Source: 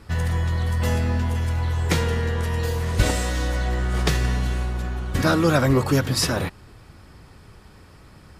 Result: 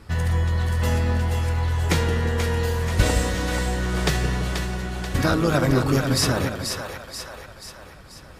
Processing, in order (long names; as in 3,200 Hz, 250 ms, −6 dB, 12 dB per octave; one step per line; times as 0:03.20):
0:05.26–0:06.11: amplitude modulation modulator 110 Hz, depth 35%
echo with a time of its own for lows and highs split 510 Hz, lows 167 ms, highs 484 ms, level −6 dB